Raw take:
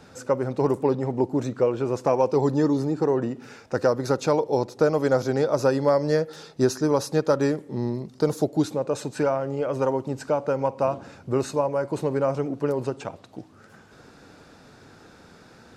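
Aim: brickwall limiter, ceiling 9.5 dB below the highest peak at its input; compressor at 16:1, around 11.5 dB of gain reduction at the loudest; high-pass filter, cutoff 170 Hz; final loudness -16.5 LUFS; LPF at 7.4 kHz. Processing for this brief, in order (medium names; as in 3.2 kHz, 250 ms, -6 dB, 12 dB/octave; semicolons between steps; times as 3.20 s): high-pass 170 Hz; low-pass 7.4 kHz; compression 16:1, threshold -27 dBFS; trim +18 dB; peak limiter -5 dBFS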